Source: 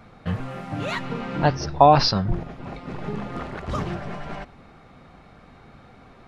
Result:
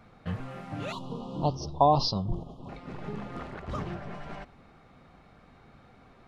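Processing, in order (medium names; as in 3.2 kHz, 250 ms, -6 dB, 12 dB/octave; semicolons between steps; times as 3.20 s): 0.92–2.69 s: elliptic band-stop 1.1–3.1 kHz, stop band 50 dB; 3.54–4.15 s: treble shelf 4.7 kHz -5.5 dB; trim -7 dB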